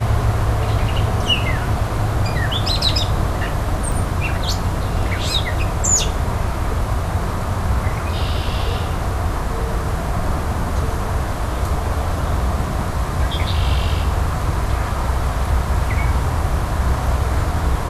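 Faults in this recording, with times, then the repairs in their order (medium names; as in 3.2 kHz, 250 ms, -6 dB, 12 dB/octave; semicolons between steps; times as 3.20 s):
3.92 s: dropout 2.2 ms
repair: interpolate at 3.92 s, 2.2 ms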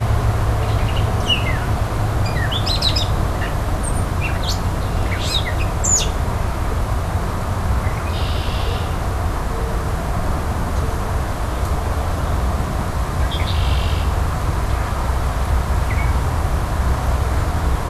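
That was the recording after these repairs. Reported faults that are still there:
nothing left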